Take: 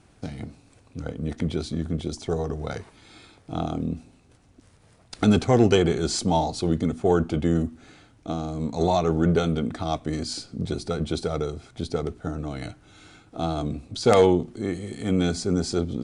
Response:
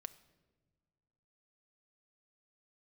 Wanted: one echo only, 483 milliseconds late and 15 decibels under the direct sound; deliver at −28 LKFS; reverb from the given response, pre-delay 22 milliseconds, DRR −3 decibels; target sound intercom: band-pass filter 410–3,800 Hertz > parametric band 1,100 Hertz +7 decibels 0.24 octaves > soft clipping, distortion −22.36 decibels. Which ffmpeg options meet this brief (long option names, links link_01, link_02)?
-filter_complex "[0:a]aecho=1:1:483:0.178,asplit=2[link_01][link_02];[1:a]atrim=start_sample=2205,adelay=22[link_03];[link_02][link_03]afir=irnorm=-1:irlink=0,volume=8dB[link_04];[link_01][link_04]amix=inputs=2:normalize=0,highpass=410,lowpass=3800,equalizer=frequency=1100:width_type=o:width=0.24:gain=7,asoftclip=threshold=-5.5dB,volume=-3.5dB"